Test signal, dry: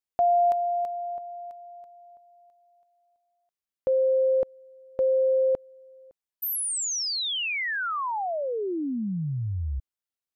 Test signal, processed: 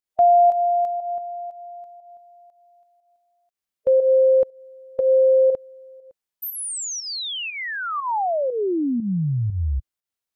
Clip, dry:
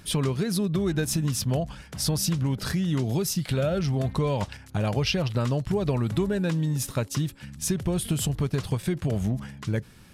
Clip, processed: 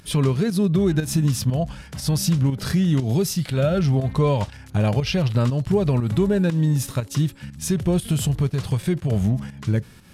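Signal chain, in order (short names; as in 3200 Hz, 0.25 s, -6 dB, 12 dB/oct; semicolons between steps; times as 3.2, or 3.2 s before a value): harmonic-percussive split harmonic +7 dB; pump 120 bpm, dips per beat 1, -9 dB, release 0.162 s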